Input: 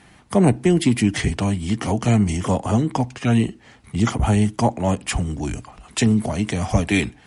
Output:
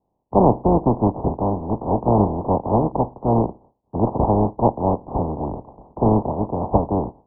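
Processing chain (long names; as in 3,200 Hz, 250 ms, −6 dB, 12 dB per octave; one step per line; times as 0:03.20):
compressing power law on the bin magnitudes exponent 0.25
Butterworth low-pass 970 Hz 72 dB per octave
noise gate with hold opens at −44 dBFS
level +5.5 dB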